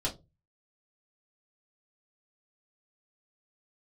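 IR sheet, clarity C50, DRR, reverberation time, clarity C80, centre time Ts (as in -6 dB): 15.5 dB, -5.0 dB, not exponential, 23.5 dB, 15 ms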